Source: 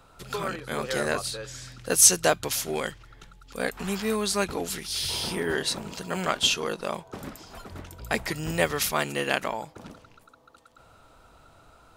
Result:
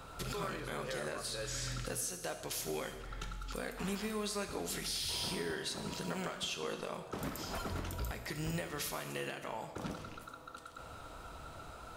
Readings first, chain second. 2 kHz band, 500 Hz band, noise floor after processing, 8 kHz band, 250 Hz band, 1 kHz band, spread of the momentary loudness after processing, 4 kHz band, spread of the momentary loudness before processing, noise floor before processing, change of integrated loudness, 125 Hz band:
−12.5 dB, −11.5 dB, −51 dBFS, −16.5 dB, −9.0 dB, −11.0 dB, 13 LU, −11.5 dB, 17 LU, −56 dBFS, −14.0 dB, −6.0 dB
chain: downward compressor 10 to 1, threshold −40 dBFS, peak gain reduction 28 dB
brickwall limiter −33 dBFS, peak gain reduction 10.5 dB
reverb whose tail is shaped and stops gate 420 ms falling, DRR 6 dB
level +4.5 dB

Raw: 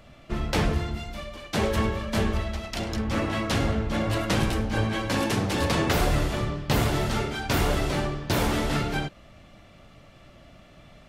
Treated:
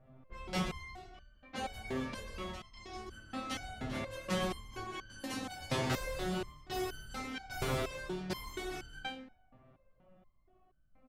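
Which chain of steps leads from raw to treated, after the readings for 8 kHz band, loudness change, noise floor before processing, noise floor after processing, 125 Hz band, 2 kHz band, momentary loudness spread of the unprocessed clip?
−12.0 dB, −13.0 dB, −52 dBFS, −68 dBFS, −16.5 dB, −12.0 dB, 8 LU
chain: echo with shifted repeats 130 ms, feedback 40%, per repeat +39 Hz, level −10 dB
low-pass that shuts in the quiet parts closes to 890 Hz, open at −23 dBFS
step-sequenced resonator 4.2 Hz 130–1,500 Hz
level +2 dB

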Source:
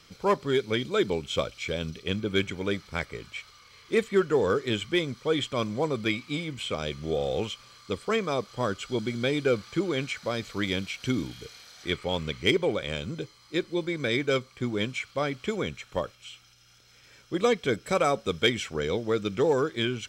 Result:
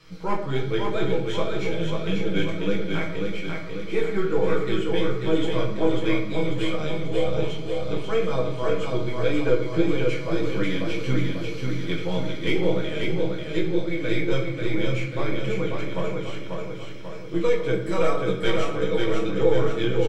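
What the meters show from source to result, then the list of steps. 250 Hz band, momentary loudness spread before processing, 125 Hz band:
+4.5 dB, 9 LU, +6.0 dB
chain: gain on one half-wave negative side −3 dB
high-shelf EQ 2,900 Hz −9 dB
notch filter 740 Hz, Q 12
comb filter 6.3 ms
in parallel at +1.5 dB: downward compressor, threshold −39 dBFS, peak gain reduction 20 dB
on the sum: chorus effect 1.8 Hz, delay 15.5 ms, depth 3.4 ms
on a send: repeating echo 541 ms, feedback 55%, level −4 dB
on the sum: rectangular room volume 170 cubic metres, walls mixed, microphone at 0.79 metres

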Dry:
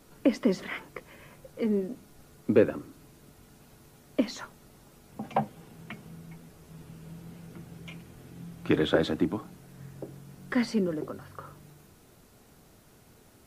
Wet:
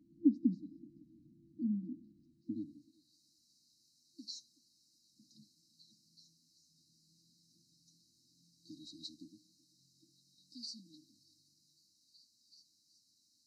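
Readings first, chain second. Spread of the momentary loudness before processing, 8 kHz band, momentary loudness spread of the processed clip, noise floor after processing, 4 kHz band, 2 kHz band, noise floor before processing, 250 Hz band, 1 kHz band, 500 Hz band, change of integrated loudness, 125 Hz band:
22 LU, −9.0 dB, 24 LU, −74 dBFS, −9.5 dB, below −40 dB, −58 dBFS, −9.0 dB, below −40 dB, below −25 dB, −11.0 dB, −15.5 dB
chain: high-shelf EQ 3,000 Hz −12 dB
echo through a band-pass that steps 378 ms, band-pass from 700 Hz, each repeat 0.7 octaves, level −5 dB
band-pass filter sweep 500 Hz → 5,000 Hz, 0:02.12–0:03.18
brick-wall band-stop 340–3,800 Hz
level +7 dB

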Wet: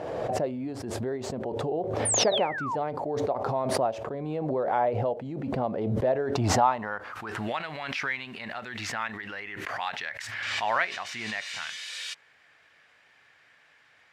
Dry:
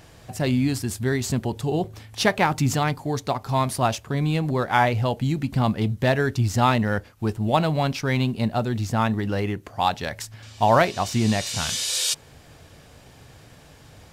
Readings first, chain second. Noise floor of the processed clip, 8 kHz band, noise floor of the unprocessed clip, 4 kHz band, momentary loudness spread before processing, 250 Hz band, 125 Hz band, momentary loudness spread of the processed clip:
−61 dBFS, −3.0 dB, −50 dBFS, −5.5 dB, 7 LU, −9.5 dB, −12.5 dB, 11 LU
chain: sound drawn into the spectrogram fall, 0:02.05–0:02.76, 850–9,900 Hz −21 dBFS
band-pass filter sweep 550 Hz → 1,900 Hz, 0:06.18–0:07.57
background raised ahead of every attack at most 26 dB per second

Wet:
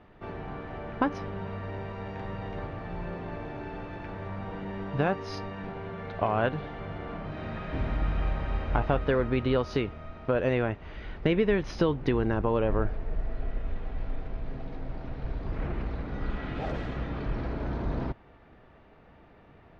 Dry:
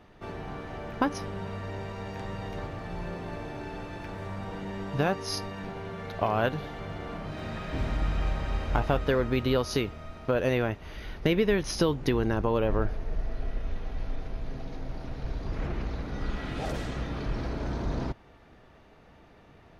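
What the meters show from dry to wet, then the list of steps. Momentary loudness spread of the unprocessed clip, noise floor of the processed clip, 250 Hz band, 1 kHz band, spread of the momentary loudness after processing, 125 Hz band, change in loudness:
12 LU, −55 dBFS, 0.0 dB, 0.0 dB, 13 LU, 0.0 dB, 0.0 dB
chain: low-pass filter 2,800 Hz 12 dB per octave

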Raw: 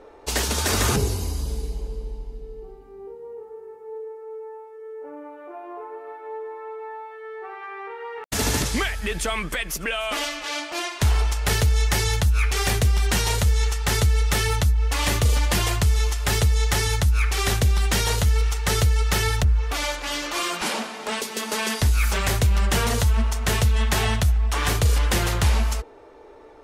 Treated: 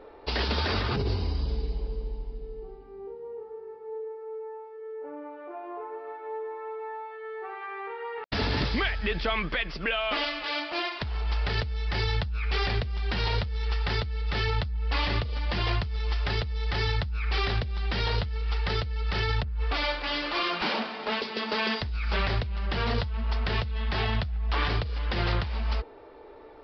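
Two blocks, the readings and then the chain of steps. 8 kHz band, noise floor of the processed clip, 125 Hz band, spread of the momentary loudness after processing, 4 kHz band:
−30.5 dB, −46 dBFS, −8.0 dB, 12 LU, −4.5 dB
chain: compressor whose output falls as the input rises −23 dBFS, ratio −1
downsampling to 11,025 Hz
level −4 dB

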